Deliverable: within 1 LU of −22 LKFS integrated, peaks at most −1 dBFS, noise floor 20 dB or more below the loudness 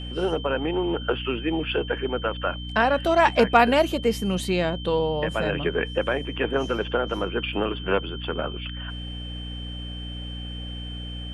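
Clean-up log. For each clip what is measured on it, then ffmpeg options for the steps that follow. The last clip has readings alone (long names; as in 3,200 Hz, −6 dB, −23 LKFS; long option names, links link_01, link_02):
mains hum 60 Hz; hum harmonics up to 300 Hz; level of the hum −32 dBFS; interfering tone 3,100 Hz; level of the tone −38 dBFS; integrated loudness −25.0 LKFS; sample peak −5.5 dBFS; target loudness −22.0 LKFS
→ -af "bandreject=frequency=60:width_type=h:width=4,bandreject=frequency=120:width_type=h:width=4,bandreject=frequency=180:width_type=h:width=4,bandreject=frequency=240:width_type=h:width=4,bandreject=frequency=300:width_type=h:width=4"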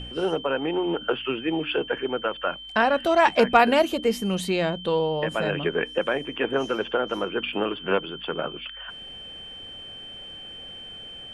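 mains hum none found; interfering tone 3,100 Hz; level of the tone −38 dBFS
→ -af "bandreject=frequency=3100:width=30"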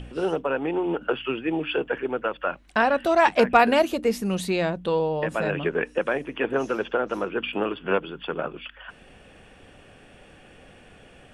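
interfering tone none found; integrated loudness −24.5 LKFS; sample peak −5.0 dBFS; target loudness −22.0 LKFS
→ -af "volume=2.5dB"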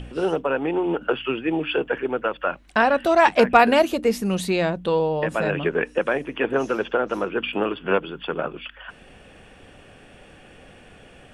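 integrated loudness −22.0 LKFS; sample peak −2.5 dBFS; background noise floor −49 dBFS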